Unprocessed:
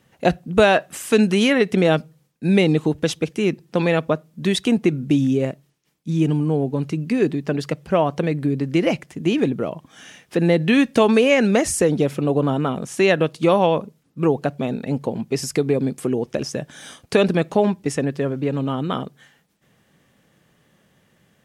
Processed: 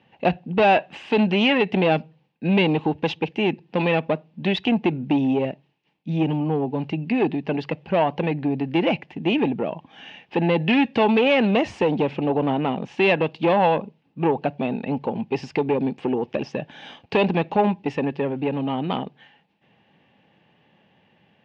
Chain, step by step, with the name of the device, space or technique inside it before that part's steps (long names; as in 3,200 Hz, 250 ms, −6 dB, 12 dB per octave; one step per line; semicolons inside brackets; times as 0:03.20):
guitar amplifier (tube saturation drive 14 dB, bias 0.3; bass and treble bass +2 dB, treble −7 dB; loudspeaker in its box 110–4,400 Hz, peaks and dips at 140 Hz −4 dB, 840 Hz +10 dB, 1,300 Hz −7 dB, 2,700 Hz +9 dB)